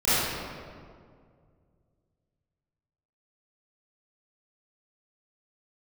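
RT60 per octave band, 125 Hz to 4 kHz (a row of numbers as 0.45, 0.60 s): 3.1, 2.5, 2.3, 1.9, 1.5, 1.2 s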